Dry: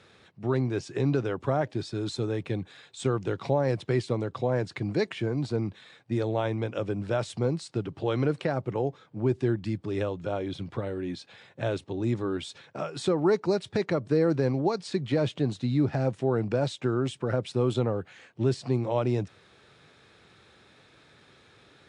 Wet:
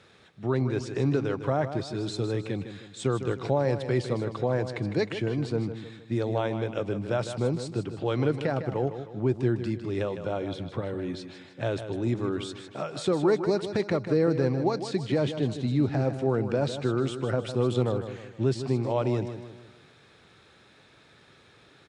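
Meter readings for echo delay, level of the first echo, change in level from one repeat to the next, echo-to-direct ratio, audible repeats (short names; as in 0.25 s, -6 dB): 0.155 s, -10.0 dB, -7.0 dB, -9.0 dB, 4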